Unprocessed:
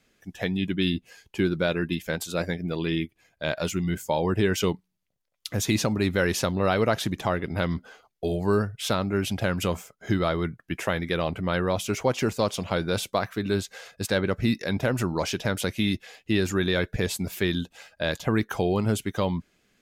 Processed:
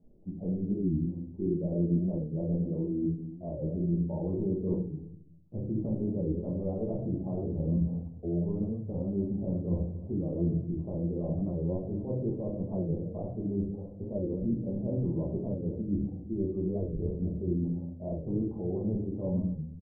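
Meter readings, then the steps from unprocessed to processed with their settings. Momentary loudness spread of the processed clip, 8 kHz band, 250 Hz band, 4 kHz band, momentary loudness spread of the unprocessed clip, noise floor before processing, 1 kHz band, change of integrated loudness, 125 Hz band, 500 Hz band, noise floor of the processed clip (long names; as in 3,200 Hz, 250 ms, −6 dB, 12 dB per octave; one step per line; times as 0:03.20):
5 LU, below −40 dB, −3.0 dB, below −40 dB, 8 LU, −75 dBFS, −21.0 dB, −5.5 dB, −2.0 dB, −8.5 dB, −45 dBFS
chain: reversed playback
downward compressor 6 to 1, threshold −36 dBFS, peak gain reduction 17 dB
reversed playback
Gaussian smoothing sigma 17 samples
single-tap delay 252 ms −17.5 dB
rectangular room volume 110 cubic metres, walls mixed, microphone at 1.3 metres
wow of a warped record 45 rpm, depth 160 cents
level +4.5 dB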